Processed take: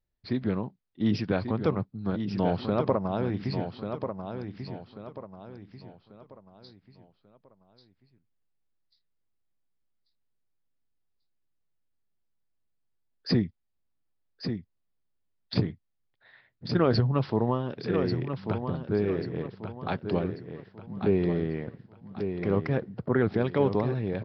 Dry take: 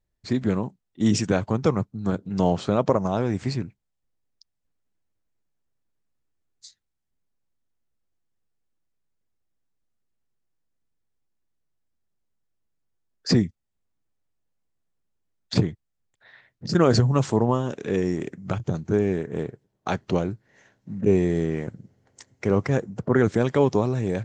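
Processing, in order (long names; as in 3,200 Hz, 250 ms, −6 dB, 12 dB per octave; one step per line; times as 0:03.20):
on a send: repeating echo 1,140 ms, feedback 37%, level −7.5 dB
on the sum: downsampling to 11,025 Hz
level −5 dB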